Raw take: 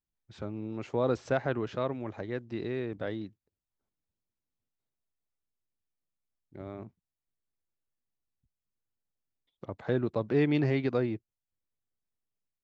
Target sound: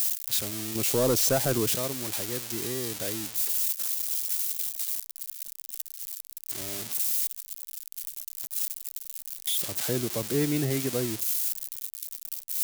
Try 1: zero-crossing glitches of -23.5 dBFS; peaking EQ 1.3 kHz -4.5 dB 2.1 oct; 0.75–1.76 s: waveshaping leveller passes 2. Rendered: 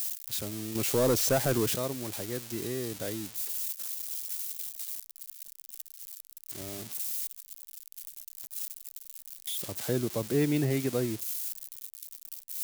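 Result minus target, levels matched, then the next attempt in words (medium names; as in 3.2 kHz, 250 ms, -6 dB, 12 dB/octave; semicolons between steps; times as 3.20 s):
zero-crossing glitches: distortion -7 dB
zero-crossing glitches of -16.5 dBFS; peaking EQ 1.3 kHz -4.5 dB 2.1 oct; 0.75–1.76 s: waveshaping leveller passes 2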